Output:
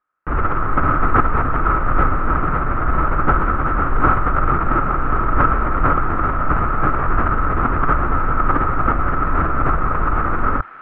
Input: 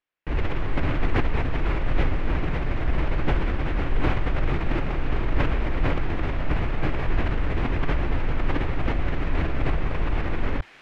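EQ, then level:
low-pass with resonance 1,300 Hz, resonance Q 12
parametric band 230 Hz +2 dB
+4.0 dB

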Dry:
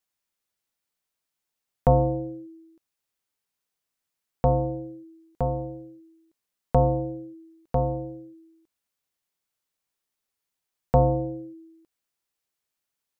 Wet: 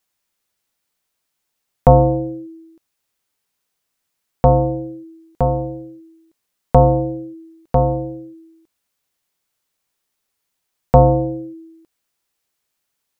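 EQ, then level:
dynamic equaliser 1,700 Hz, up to +6 dB, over −42 dBFS, Q 1.2
+8.5 dB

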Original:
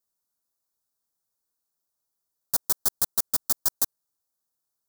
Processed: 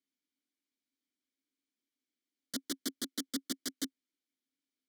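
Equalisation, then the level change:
formant filter i
high-pass filter 210 Hz
+15.0 dB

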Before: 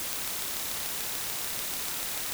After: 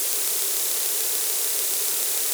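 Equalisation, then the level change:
high-pass with resonance 410 Hz, resonance Q 4.9
high-shelf EQ 2,800 Hz +7 dB
parametric band 9,300 Hz +7 dB 1.7 octaves
−1.0 dB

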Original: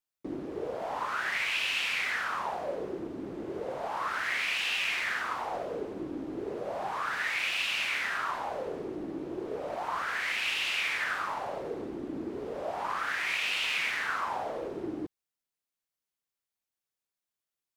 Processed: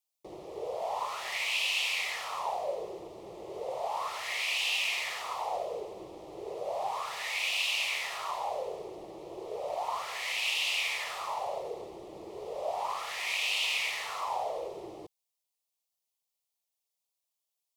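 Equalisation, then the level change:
low-shelf EQ 370 Hz −12 dB
phaser with its sweep stopped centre 640 Hz, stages 4
+5.0 dB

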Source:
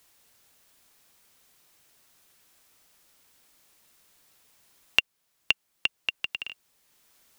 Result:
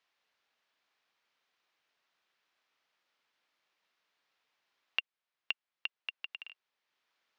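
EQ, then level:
high-pass filter 1,100 Hz 6 dB per octave
high-frequency loss of the air 250 metres
−6.5 dB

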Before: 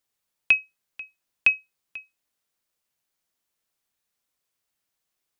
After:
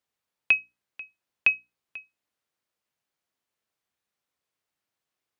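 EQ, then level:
high-pass filter 61 Hz
high-shelf EQ 4,800 Hz −10 dB
mains-hum notches 60/120/180/240/300 Hz
0.0 dB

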